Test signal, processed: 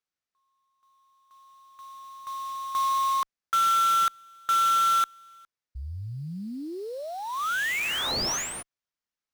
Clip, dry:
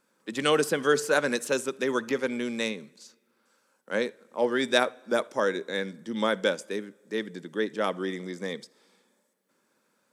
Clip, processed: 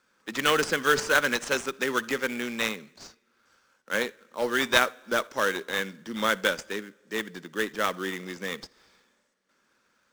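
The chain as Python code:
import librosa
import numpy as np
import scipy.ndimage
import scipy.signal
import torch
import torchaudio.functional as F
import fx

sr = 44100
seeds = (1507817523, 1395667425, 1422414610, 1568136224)

p1 = fx.diode_clip(x, sr, knee_db=-7.0)
p2 = scipy.signal.sosfilt(scipy.signal.ellip(4, 1.0, 40, 9500.0, 'lowpass', fs=sr, output='sos'), p1)
p3 = fx.band_shelf(p2, sr, hz=2800.0, db=9.5, octaves=2.8)
p4 = fx.sample_hold(p3, sr, seeds[0], rate_hz=4800.0, jitter_pct=20)
p5 = p3 + F.gain(torch.from_numpy(p4), -4.0).numpy()
y = F.gain(torch.from_numpy(p5), -5.5).numpy()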